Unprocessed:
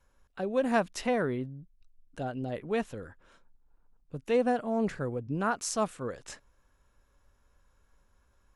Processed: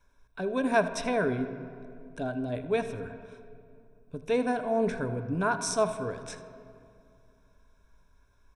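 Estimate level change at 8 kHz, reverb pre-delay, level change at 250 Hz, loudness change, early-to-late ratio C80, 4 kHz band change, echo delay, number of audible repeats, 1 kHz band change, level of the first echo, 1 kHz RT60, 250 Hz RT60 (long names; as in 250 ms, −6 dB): +1.5 dB, 21 ms, +1.0 dB, +1.5 dB, 10.5 dB, +2.5 dB, 80 ms, 1, +1.5 dB, −17.0 dB, 2.3 s, 2.9 s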